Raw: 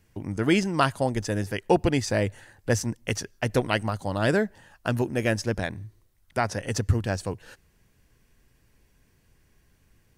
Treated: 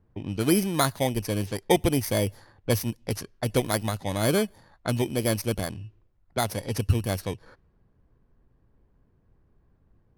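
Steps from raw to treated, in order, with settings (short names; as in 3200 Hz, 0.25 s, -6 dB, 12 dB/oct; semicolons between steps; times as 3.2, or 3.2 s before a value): FFT order left unsorted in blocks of 16 samples; low-pass opened by the level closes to 1300 Hz, open at -23 dBFS; ending taper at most 590 dB/s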